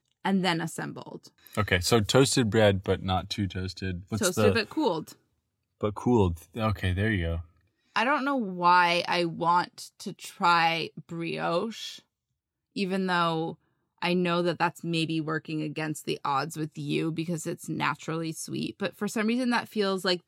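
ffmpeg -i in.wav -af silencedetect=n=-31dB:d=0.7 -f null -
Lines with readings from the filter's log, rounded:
silence_start: 5.01
silence_end: 5.83 | silence_duration: 0.82
silence_start: 11.89
silence_end: 12.77 | silence_duration: 0.88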